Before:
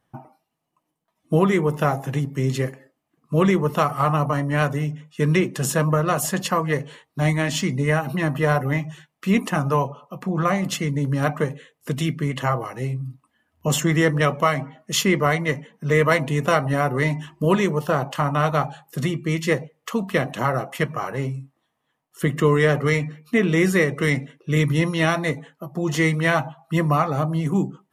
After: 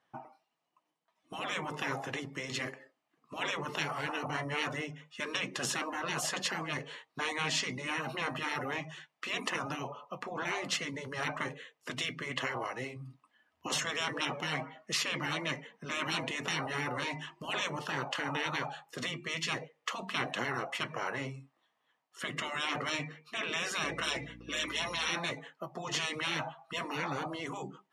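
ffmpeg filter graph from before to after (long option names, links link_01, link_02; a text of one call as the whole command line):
ffmpeg -i in.wav -filter_complex "[0:a]asettb=1/sr,asplit=3[link_01][link_02][link_03];[link_01]atrim=end=23.844[link_04];[link_02]atrim=start=23.84:end=25.09,asetpts=PTS-STARTPTS,afade=type=in:duration=0.004:curve=qsin,afade=type=out:start_time=1.246:duration=0.004:curve=qsin,aecho=1:1:6:0.98,atrim=end_sample=55125,aeval=exprs='val(0)+0.0224*(sin(2*PI*60*n/s)+sin(2*PI*2*60*n/s)/2+sin(2*PI*3*60*n/s)/3+sin(2*PI*4*60*n/s)/4+sin(2*PI*5*60*n/s)/5)':channel_layout=same[link_05];[link_03]atrim=start=25.086[link_06];[link_04][link_05]acrossfade=duration=0.004:curve1=hsin:curve2=qsin[link_07];[link_07][link_06]acrossfade=duration=0.004:curve1=qsin:curve2=hsin,highpass=frequency=780:poles=1,afftfilt=real='re*lt(hypot(re,im),0.126)':imag='im*lt(hypot(re,im),0.126)':win_size=1024:overlap=0.75,lowpass=5500" out.wav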